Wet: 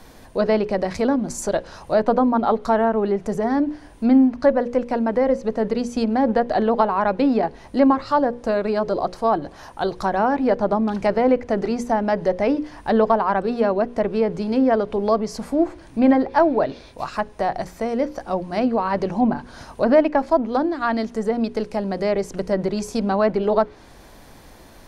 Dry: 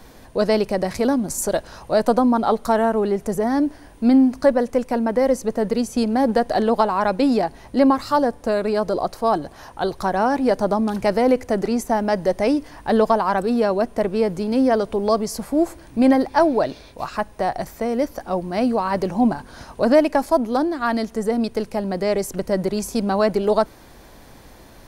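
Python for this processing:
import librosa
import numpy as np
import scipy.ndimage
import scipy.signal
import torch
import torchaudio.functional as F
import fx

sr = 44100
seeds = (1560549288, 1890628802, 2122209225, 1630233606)

y = fx.hum_notches(x, sr, base_hz=60, count=9)
y = fx.env_lowpass_down(y, sr, base_hz=2800.0, full_db=-15.5)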